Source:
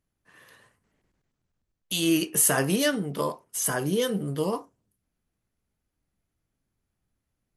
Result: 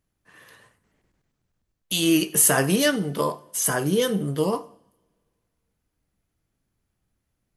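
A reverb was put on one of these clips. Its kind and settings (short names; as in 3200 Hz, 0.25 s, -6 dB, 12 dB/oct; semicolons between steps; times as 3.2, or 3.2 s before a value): two-slope reverb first 0.67 s, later 2.5 s, from -26 dB, DRR 15.5 dB; gain +3.5 dB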